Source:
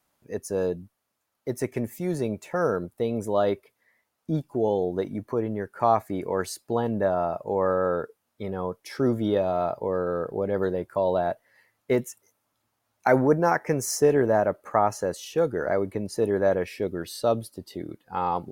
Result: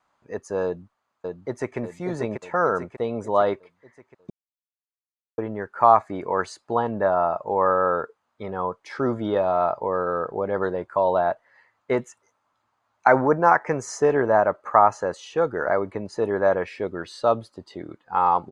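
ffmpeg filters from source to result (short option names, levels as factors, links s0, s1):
-filter_complex "[0:a]asplit=2[s0][s1];[s1]afade=t=in:st=0.65:d=0.01,afade=t=out:st=1.78:d=0.01,aecho=0:1:590|1180|1770|2360|2950|3540:0.630957|0.315479|0.157739|0.0788697|0.0394348|0.0197174[s2];[s0][s2]amix=inputs=2:normalize=0,asplit=3[s3][s4][s5];[s3]atrim=end=4.3,asetpts=PTS-STARTPTS,afade=t=out:st=4.296:d=0.004:c=hsin[s6];[s4]atrim=start=4.3:end=5.38,asetpts=PTS-STARTPTS,volume=0[s7];[s5]atrim=start=5.38,asetpts=PTS-STARTPTS,afade=t=in:d=0.004:c=hsin[s8];[s6][s7][s8]concat=n=3:v=0:a=1,lowpass=f=7300:w=0.5412,lowpass=f=7300:w=1.3066,equalizer=f=1100:t=o:w=1.6:g=12.5,bandreject=f=5500:w=10,volume=0.708"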